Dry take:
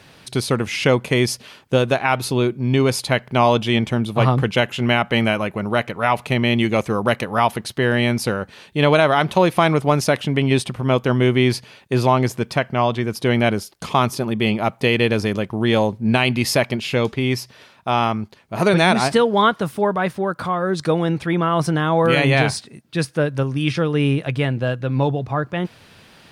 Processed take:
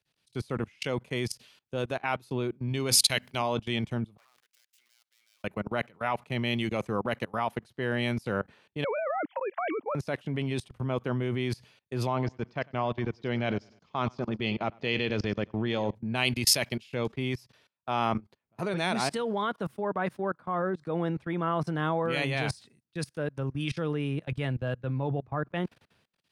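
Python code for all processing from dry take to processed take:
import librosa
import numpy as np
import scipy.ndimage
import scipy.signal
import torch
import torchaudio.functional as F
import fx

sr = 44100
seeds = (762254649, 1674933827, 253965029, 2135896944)

y = fx.chain(x, sr, fx.high_shelf(hz=2400.0, db=7.0),
    fx.hum_notches(base_hz=50, count=6), at=(2.68, 3.42))
y = fx.chain(y, sr, fx.dead_time(dead_ms=0.17),
    fx.highpass(hz=1400.0, slope=12),
    fx.level_steps(step_db=22), at=(4.17, 5.44))
y = fx.chain(y, sr, fx.sine_speech(),
    fx.over_compress(threshold_db=-16.0, ratio=-0.5), at=(8.84, 9.95))
y = fx.chain(y, sr, fx.steep_lowpass(hz=6200.0, slope=36),
    fx.echo_feedback(ms=100, feedback_pct=39, wet_db=-16.5), at=(12.07, 15.95))
y = fx.level_steps(y, sr, step_db=24)
y = fx.band_widen(y, sr, depth_pct=100)
y = y * librosa.db_to_amplitude(-5.0)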